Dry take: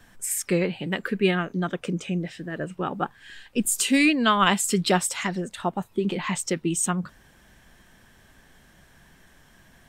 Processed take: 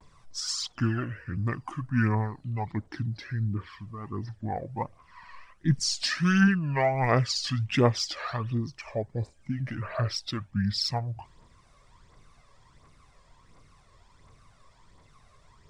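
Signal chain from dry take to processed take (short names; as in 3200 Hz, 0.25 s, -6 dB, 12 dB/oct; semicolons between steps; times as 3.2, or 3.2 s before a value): wow and flutter 94 cents; wide varispeed 0.63×; phaser 1.4 Hz, delay 1.9 ms, feedback 52%; gain -6 dB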